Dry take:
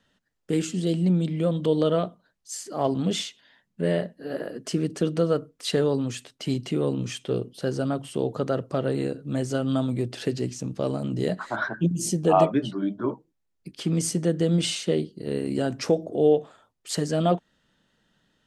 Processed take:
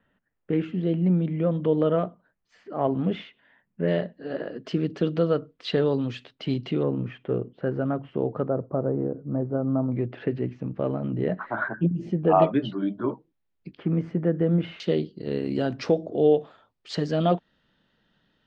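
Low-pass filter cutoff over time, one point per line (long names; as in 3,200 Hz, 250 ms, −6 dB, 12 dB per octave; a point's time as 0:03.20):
low-pass filter 24 dB per octave
2,400 Hz
from 0:03.88 3,900 Hz
from 0:06.83 2,100 Hz
from 0:08.48 1,100 Hz
from 0:09.92 2,300 Hz
from 0:12.42 3,900 Hz
from 0:13.77 2,000 Hz
from 0:14.80 4,600 Hz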